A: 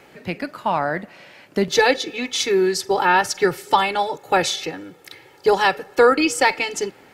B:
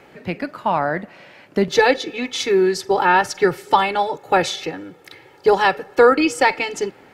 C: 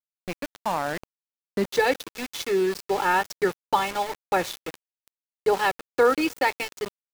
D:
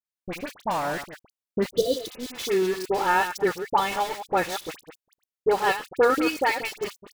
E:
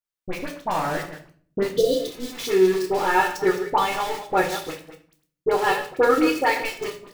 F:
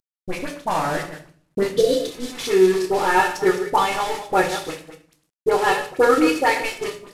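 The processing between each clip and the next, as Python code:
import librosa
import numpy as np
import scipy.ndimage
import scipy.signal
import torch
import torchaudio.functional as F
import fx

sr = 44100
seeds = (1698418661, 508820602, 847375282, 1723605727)

y1 = fx.high_shelf(x, sr, hz=3800.0, db=-8.0)
y1 = y1 * librosa.db_to_amplitude(2.0)
y2 = np.where(np.abs(y1) >= 10.0 ** (-22.5 / 20.0), y1, 0.0)
y2 = y2 * librosa.db_to_amplitude(-7.0)
y3 = fx.reverse_delay(y2, sr, ms=114, wet_db=-10.0)
y3 = fx.spec_repair(y3, sr, seeds[0], start_s=1.75, length_s=0.51, low_hz=710.0, high_hz=2900.0, source='both')
y3 = fx.dispersion(y3, sr, late='highs', ms=55.0, hz=1700.0)
y4 = fx.room_shoebox(y3, sr, seeds[1], volume_m3=49.0, walls='mixed', distance_m=0.48)
y5 = fx.cvsd(y4, sr, bps=64000)
y5 = y5 * librosa.db_to_amplitude(2.5)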